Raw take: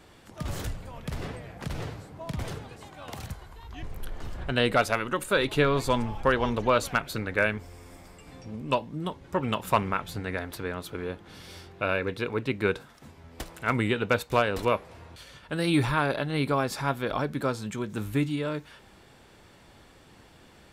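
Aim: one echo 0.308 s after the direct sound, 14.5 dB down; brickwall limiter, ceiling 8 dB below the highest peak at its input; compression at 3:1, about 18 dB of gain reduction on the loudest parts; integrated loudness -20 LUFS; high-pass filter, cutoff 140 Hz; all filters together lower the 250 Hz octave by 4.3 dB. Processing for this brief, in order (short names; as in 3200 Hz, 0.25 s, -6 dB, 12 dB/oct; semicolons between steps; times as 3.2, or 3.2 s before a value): HPF 140 Hz; bell 250 Hz -5 dB; compressor 3:1, threshold -43 dBFS; limiter -30 dBFS; echo 0.308 s -14.5 dB; gain +25 dB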